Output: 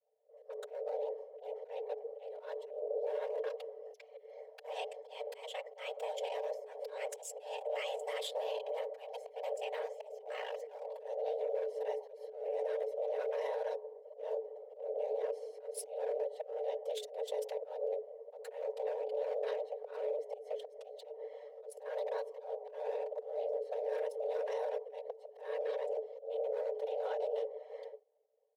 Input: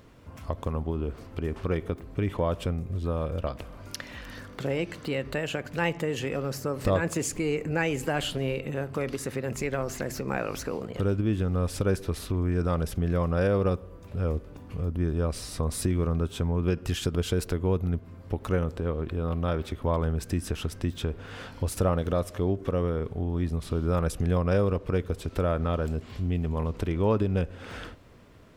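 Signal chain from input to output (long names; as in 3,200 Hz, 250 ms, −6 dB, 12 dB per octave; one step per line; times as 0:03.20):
adaptive Wiener filter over 41 samples
downward expander −41 dBFS
random phases in short frames
guitar amp tone stack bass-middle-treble 6-0-2
comb filter 5.8 ms, depth 56%
brickwall limiter −42 dBFS, peak gain reduction 13.5 dB
volume swells 186 ms
gain on a spectral selection 0:09.94–0:10.19, 490–1,900 Hz −9 dB
frequency shifter +420 Hz
level +12 dB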